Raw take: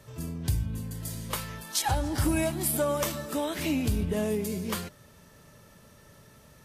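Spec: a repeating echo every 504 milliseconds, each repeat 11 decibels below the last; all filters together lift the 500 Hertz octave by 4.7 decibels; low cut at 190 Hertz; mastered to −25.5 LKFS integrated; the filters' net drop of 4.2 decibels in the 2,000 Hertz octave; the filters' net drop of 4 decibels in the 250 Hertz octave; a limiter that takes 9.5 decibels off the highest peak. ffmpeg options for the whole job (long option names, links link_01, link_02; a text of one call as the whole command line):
ffmpeg -i in.wav -af "highpass=190,equalizer=frequency=250:width_type=o:gain=-6.5,equalizer=frequency=500:width_type=o:gain=8,equalizer=frequency=2000:width_type=o:gain=-6,alimiter=limit=-22.5dB:level=0:latency=1,aecho=1:1:504|1008|1512:0.282|0.0789|0.0221,volume=7.5dB" out.wav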